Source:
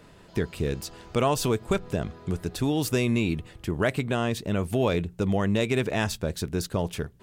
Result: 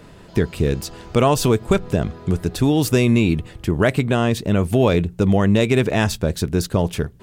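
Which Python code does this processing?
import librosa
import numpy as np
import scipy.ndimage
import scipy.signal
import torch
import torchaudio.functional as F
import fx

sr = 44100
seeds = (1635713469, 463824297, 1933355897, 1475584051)

y = fx.low_shelf(x, sr, hz=470.0, db=3.5)
y = F.gain(torch.from_numpy(y), 6.0).numpy()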